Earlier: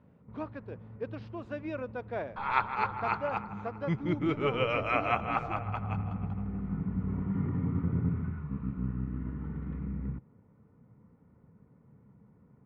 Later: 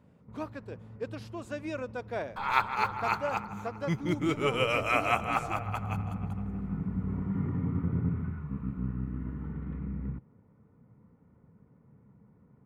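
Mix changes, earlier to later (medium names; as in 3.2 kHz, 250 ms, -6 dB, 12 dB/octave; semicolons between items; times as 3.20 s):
first sound: add distance through air 250 m; master: remove distance through air 270 m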